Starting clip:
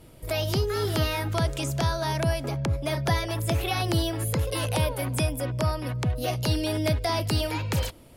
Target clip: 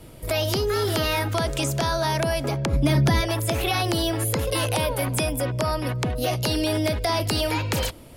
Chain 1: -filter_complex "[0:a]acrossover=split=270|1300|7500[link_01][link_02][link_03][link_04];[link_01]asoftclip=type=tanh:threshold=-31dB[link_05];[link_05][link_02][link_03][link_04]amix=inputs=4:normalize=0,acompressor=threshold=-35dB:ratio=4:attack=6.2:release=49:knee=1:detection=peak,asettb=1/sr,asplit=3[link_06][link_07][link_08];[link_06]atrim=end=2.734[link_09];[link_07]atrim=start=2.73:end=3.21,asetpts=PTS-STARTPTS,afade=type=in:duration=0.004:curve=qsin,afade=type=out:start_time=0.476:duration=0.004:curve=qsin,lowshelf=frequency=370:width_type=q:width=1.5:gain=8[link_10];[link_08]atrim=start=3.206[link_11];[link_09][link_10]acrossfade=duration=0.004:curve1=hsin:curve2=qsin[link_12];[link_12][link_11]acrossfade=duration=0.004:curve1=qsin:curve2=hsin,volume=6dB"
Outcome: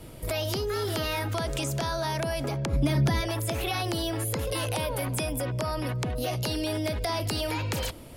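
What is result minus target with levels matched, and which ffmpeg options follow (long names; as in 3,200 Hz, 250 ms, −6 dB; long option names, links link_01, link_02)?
downward compressor: peak gain reduction +6 dB
-filter_complex "[0:a]acrossover=split=270|1300|7500[link_01][link_02][link_03][link_04];[link_01]asoftclip=type=tanh:threshold=-31dB[link_05];[link_05][link_02][link_03][link_04]amix=inputs=4:normalize=0,acompressor=threshold=-27dB:ratio=4:attack=6.2:release=49:knee=1:detection=peak,asettb=1/sr,asplit=3[link_06][link_07][link_08];[link_06]atrim=end=2.734[link_09];[link_07]atrim=start=2.73:end=3.21,asetpts=PTS-STARTPTS,afade=type=in:duration=0.004:curve=qsin,afade=type=out:start_time=0.476:duration=0.004:curve=qsin,lowshelf=frequency=370:width_type=q:width=1.5:gain=8[link_10];[link_08]atrim=start=3.206[link_11];[link_09][link_10]acrossfade=duration=0.004:curve1=hsin:curve2=qsin[link_12];[link_12][link_11]acrossfade=duration=0.004:curve1=qsin:curve2=hsin,volume=6dB"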